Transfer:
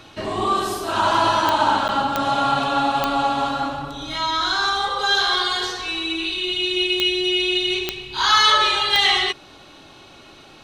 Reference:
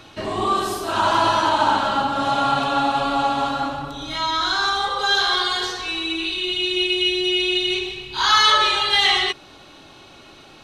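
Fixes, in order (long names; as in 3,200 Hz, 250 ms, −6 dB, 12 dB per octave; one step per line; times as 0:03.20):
click removal
repair the gap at 0:01.88, 9.5 ms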